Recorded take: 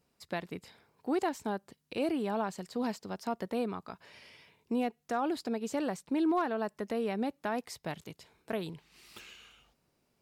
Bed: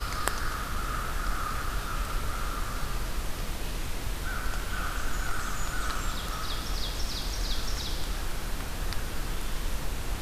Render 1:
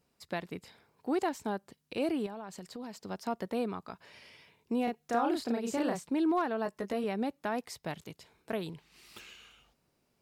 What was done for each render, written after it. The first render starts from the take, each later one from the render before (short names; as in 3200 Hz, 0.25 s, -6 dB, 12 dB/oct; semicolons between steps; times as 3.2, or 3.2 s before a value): 2.26–2.99 compressor, threshold -39 dBFS; 4.84–6.09 doubler 34 ms -2 dB; 6.64–7.04 doubler 16 ms -6 dB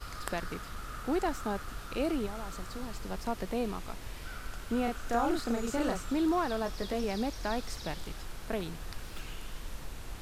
add bed -10 dB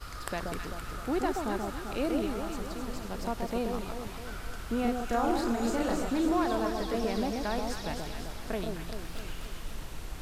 echo with dull and thin repeats by turns 0.13 s, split 1000 Hz, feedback 73%, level -3 dB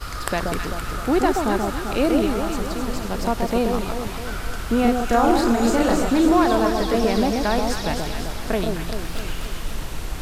gain +11 dB